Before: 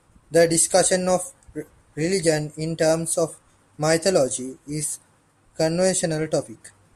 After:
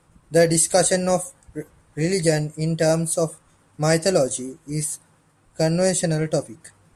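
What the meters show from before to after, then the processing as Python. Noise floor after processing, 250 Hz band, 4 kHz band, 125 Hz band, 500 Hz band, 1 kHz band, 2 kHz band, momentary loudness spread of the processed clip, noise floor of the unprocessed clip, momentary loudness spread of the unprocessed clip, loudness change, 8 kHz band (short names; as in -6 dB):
-60 dBFS, +1.5 dB, 0.0 dB, +4.5 dB, 0.0 dB, 0.0 dB, 0.0 dB, 16 LU, -60 dBFS, 16 LU, +0.5 dB, 0.0 dB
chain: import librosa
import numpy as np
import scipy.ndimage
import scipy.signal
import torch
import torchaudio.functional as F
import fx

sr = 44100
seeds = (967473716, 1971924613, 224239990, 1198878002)

y = fx.peak_eq(x, sr, hz=160.0, db=6.5, octaves=0.22)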